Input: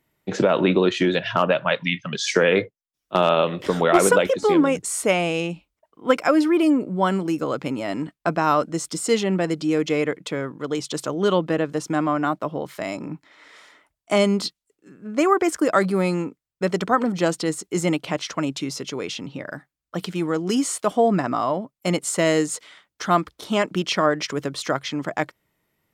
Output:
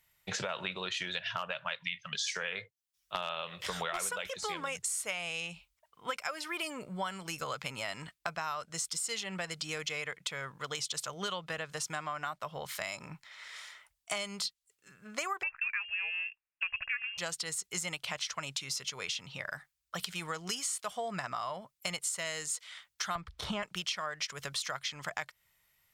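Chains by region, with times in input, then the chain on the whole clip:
15.43–17.18 s: high-pass 330 Hz + frequency inversion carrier 3 kHz
23.15–23.63 s: RIAA curve playback + three bands compressed up and down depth 100%
whole clip: amplifier tone stack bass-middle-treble 10-0-10; compression 6:1, threshold -39 dBFS; trim +5.5 dB

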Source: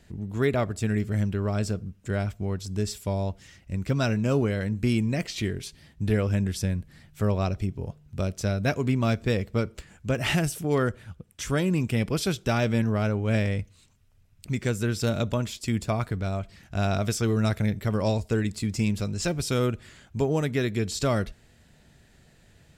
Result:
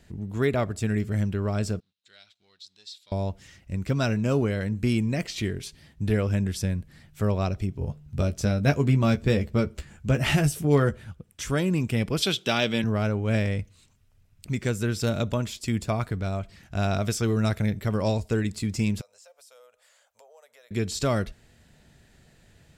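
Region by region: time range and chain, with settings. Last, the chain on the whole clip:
1.80–3.12 s: waveshaping leveller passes 1 + band-pass filter 3.9 kHz, Q 6.2
7.80–11.11 s: bass shelf 210 Hz +5.5 dB + doubling 14 ms -7 dB
12.22–12.84 s: high-pass 180 Hz + peaking EQ 3.3 kHz +12.5 dB 0.79 oct
19.01–20.71 s: elliptic high-pass 530 Hz + peaking EQ 2.1 kHz -12 dB 3 oct + compression 3:1, threshold -56 dBFS
whole clip: none

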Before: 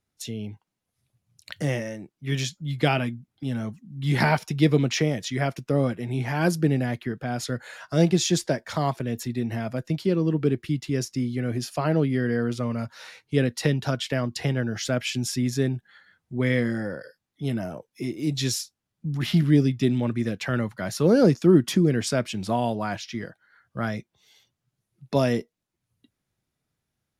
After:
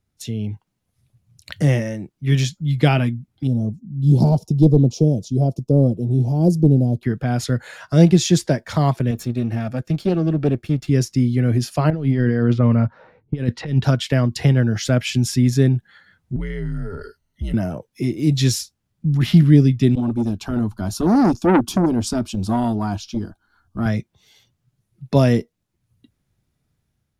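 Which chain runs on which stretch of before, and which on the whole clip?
3.47–7.03 s: overload inside the chain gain 13 dB + Chebyshev band-stop 560–5600 Hz + treble shelf 3.3 kHz -9 dB
9.11–10.88 s: partial rectifier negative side -7 dB + comb of notches 970 Hz + loudspeaker Doppler distortion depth 0.13 ms
11.90–13.84 s: level-controlled noise filter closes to 410 Hz, open at -17 dBFS + compressor with a negative ratio -26 dBFS, ratio -0.5
16.36–17.54 s: rippled EQ curve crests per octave 1.9, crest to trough 11 dB + compression 5:1, threshold -34 dBFS + frequency shift -80 Hz
19.95–23.86 s: bass shelf 140 Hz +12 dB + static phaser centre 520 Hz, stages 6 + transformer saturation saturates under 1 kHz
whole clip: bass shelf 190 Hz +11.5 dB; level rider gain up to 3 dB; trim +1 dB

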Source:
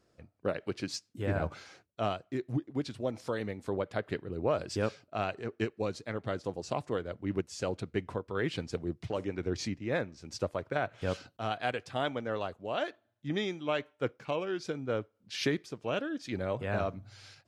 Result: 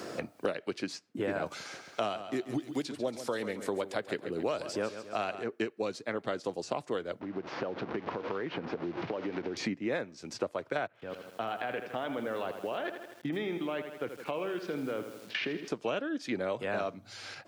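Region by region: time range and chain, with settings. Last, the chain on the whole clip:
1.46–5.43 s: treble shelf 5 kHz +11 dB + feedback delay 137 ms, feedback 43%, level -13 dB
7.21–9.57 s: one-bit delta coder 32 kbps, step -39.5 dBFS + low-pass 1.5 kHz + compression 12:1, threshold -39 dBFS
10.87–15.68 s: low-pass 2.6 kHz + level held to a coarse grid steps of 22 dB + bit-crushed delay 80 ms, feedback 55%, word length 11-bit, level -9.5 dB
whole clip: high-pass 220 Hz 12 dB/octave; three bands compressed up and down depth 100%; trim +1 dB

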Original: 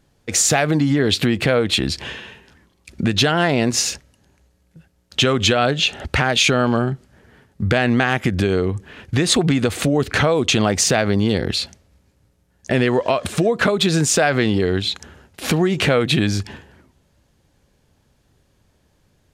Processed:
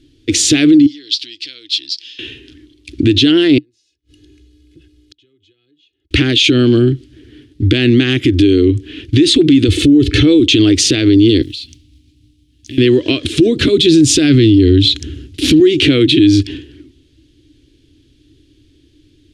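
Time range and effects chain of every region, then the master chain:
0.86–2.19 s: band-pass filter 5.1 kHz, Q 4.1 + tape noise reduction on one side only decoder only
3.58–6.11 s: comb 2.4 ms, depth 67% + compression 1.5:1, threshold -55 dBFS + inverted gate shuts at -36 dBFS, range -36 dB
9.68–10.40 s: bass shelf 220 Hz +9 dB + comb 2.3 ms, depth 50%
11.42–12.78 s: high-order bell 800 Hz -13 dB 2.7 oct + compression 4:1, threshold -37 dBFS + modulation noise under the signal 19 dB
13.39–15.60 s: high-pass 44 Hz + tone controls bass +11 dB, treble +4 dB
whole clip: de-esser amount 25%; FFT filter 130 Hz 0 dB, 190 Hz -19 dB, 300 Hz +15 dB, 560 Hz -17 dB, 860 Hz -27 dB, 3.3 kHz +6 dB, 7.1 kHz -7 dB, 10 kHz -7 dB, 15 kHz -20 dB; loudness maximiser +10 dB; trim -1 dB

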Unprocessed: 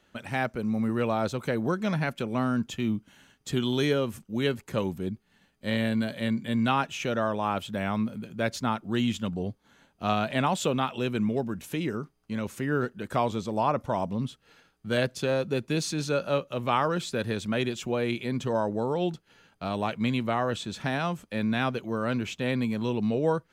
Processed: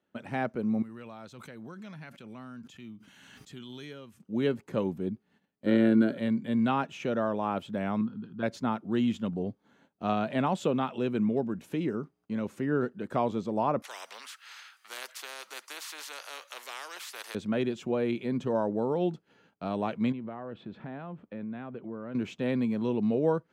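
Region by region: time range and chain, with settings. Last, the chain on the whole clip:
0.82–4.20 s: amplifier tone stack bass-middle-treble 5-5-5 + swell ahead of each attack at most 22 dB/s
5.66–6.18 s: small resonant body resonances 340/1400 Hz, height 15 dB, ringing for 30 ms + tape noise reduction on one side only decoder only
8.01–8.43 s: low-pass 4.2 kHz + static phaser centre 2.2 kHz, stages 6
13.82–17.35 s: high-pass 1.4 kHz 24 dB/octave + spectrum-flattening compressor 4:1
20.12–22.15 s: distance through air 410 m + compression 4:1, threshold -35 dBFS
whole clip: gate -60 dBFS, range -11 dB; high-pass 220 Hz 12 dB/octave; tilt EQ -3 dB/octave; trim -3.5 dB

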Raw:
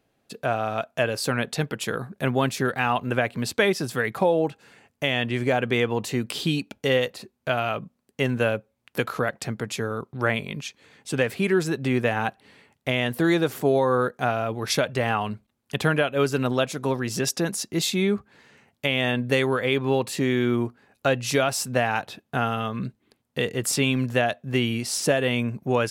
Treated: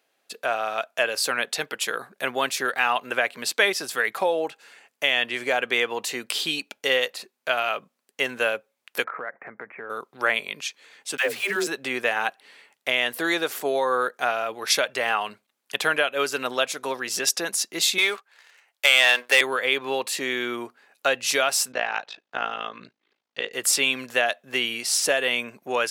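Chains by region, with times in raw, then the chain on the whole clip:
9.04–9.90 s: steep low-pass 2.2 kHz 72 dB/octave + compression 3:1, threshold -30 dBFS
11.17–11.67 s: phase dispersion lows, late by 127 ms, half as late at 360 Hz + small samples zeroed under -39 dBFS
17.98–19.41 s: high-pass 640 Hz + waveshaping leveller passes 2
21.72–23.53 s: low-pass 5.9 kHz 24 dB/octave + AM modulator 54 Hz, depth 85%
whole clip: high-pass 650 Hz 12 dB/octave; peaking EQ 860 Hz -4 dB 1.4 oct; trim +5 dB

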